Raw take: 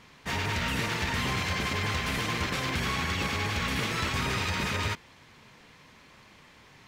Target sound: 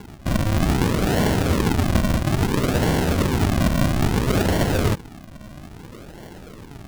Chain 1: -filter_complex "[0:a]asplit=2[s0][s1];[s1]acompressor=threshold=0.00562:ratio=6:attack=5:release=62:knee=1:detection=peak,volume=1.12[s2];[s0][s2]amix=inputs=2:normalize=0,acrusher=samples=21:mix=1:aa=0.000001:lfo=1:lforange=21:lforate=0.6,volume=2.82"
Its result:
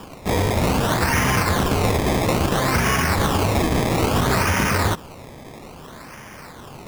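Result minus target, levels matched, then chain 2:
decimation with a swept rate: distortion -5 dB
-filter_complex "[0:a]asplit=2[s0][s1];[s1]acompressor=threshold=0.00562:ratio=6:attack=5:release=62:knee=1:detection=peak,volume=1.12[s2];[s0][s2]amix=inputs=2:normalize=0,acrusher=samples=70:mix=1:aa=0.000001:lfo=1:lforange=70:lforate=0.6,volume=2.82"

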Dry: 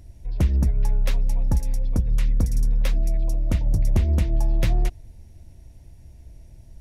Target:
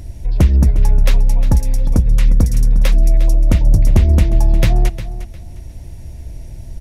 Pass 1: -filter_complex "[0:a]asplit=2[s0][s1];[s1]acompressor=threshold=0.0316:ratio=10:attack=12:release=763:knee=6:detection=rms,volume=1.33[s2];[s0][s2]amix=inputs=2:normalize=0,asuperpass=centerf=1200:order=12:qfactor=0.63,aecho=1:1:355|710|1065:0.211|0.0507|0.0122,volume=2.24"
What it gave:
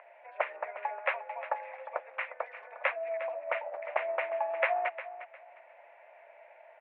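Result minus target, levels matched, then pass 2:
1 kHz band +19.5 dB
-filter_complex "[0:a]asplit=2[s0][s1];[s1]acompressor=threshold=0.0316:ratio=10:attack=12:release=763:knee=6:detection=rms,volume=1.33[s2];[s0][s2]amix=inputs=2:normalize=0,aecho=1:1:355|710|1065:0.211|0.0507|0.0122,volume=2.24"

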